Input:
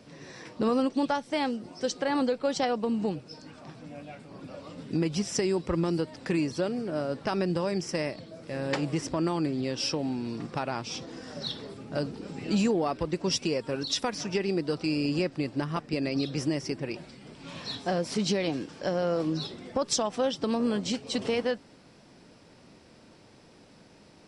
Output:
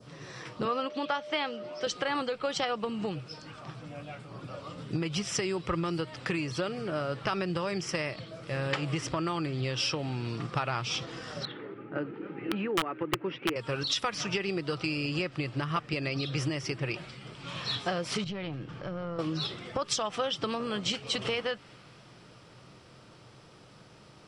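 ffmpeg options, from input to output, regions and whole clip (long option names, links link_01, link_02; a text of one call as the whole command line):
ffmpeg -i in.wav -filter_complex "[0:a]asettb=1/sr,asplit=3[link_01][link_02][link_03];[link_01]atrim=end=0.654[link_04];[link_02]atrim=start=0.65:end=1.87,asetpts=PTS-STARTPTS,afade=type=in:duration=0.004:curve=qsin,afade=type=out:start_time=1.216:duration=0.004:curve=qsin,acrossover=split=200 6000:gain=0.2 1 0.126[link_05][link_06][link_07];[link_05][link_06][link_07]amix=inputs=3:normalize=0,aeval=exprs='val(0)+0.0112*sin(2*PI*600*n/s)':channel_layout=same[link_08];[link_03]atrim=start=1.866[link_09];[link_04][link_08]acrossfade=duration=0.004:curve1=hsin:curve2=qsin[link_10];[link_10][link_09]acrossfade=duration=0.004:curve1=qsin:curve2=hsin,asettb=1/sr,asplit=3[link_11][link_12][link_13];[link_11]atrim=end=11.454[link_14];[link_12]atrim=start=11.45:end=13.56,asetpts=PTS-STARTPTS,afade=type=in:duration=0.004:curve=qsin,afade=type=out:start_time=2.106:duration=0.004:curve=qsin,highpass=240,equalizer=frequency=320:width_type=q:width=4:gain=9,equalizer=frequency=660:width_type=q:width=4:gain=-8,equalizer=frequency=1100:width_type=q:width=4:gain=-7,lowpass=frequency=2100:width=0.5412,lowpass=frequency=2100:width=1.3066,aeval=exprs='(mod(7.08*val(0)+1,2)-1)/7.08':channel_layout=same[link_15];[link_13]atrim=start=13.556[link_16];[link_14][link_15]acrossfade=duration=0.004:curve1=hsin:curve2=qsin[link_17];[link_17][link_16]acrossfade=duration=0.004:curve1=qsin:curve2=hsin,asettb=1/sr,asplit=3[link_18][link_19][link_20];[link_18]atrim=end=18.244[link_21];[link_19]atrim=start=18.24:end=19.19,asetpts=PTS-STARTPTS,afade=type=in:duration=0.004:curve=qsin,afade=type=out:start_time=0.946:duration=0.004:curve=qsin,bass=frequency=250:gain=10,treble=frequency=4000:gain=-13,acompressor=threshold=-37dB:ratio=2.5:attack=3.2:release=140:knee=1:detection=peak,aeval=exprs='(tanh(17.8*val(0)+0.4)-tanh(0.4))/17.8':channel_layout=same[link_22];[link_20]atrim=start=19.186[link_23];[link_21][link_22]acrossfade=duration=0.004:curve1=hsin:curve2=qsin[link_24];[link_24][link_23]acrossfade=duration=0.004:curve1=qsin:curve2=hsin,adynamicequalizer=threshold=0.00398:dfrequency=2400:dqfactor=0.97:tfrequency=2400:tqfactor=0.97:attack=5:release=100:ratio=0.375:range=3.5:mode=boostabove:tftype=bell,acompressor=threshold=-28dB:ratio=4,equalizer=frequency=125:width_type=o:width=0.33:gain=10,equalizer=frequency=250:width_type=o:width=0.33:gain=-8,equalizer=frequency=1250:width_type=o:width=0.33:gain=9,equalizer=frequency=3150:width_type=o:width=0.33:gain=5" out.wav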